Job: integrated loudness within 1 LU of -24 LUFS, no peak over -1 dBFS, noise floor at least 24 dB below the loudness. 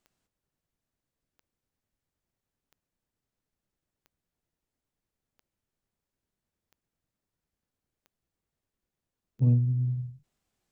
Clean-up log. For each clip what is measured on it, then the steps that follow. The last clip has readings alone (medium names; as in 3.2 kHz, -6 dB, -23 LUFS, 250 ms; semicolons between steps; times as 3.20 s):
clicks found 8; loudness -27.0 LUFS; peak level -14.0 dBFS; loudness target -24.0 LUFS
-> de-click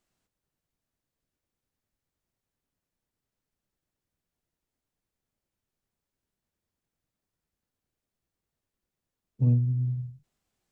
clicks found 0; loudness -27.0 LUFS; peak level -14.0 dBFS; loudness target -24.0 LUFS
-> trim +3 dB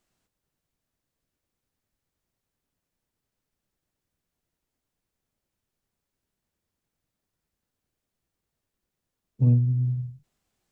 loudness -24.0 LUFS; peak level -11.0 dBFS; noise floor -85 dBFS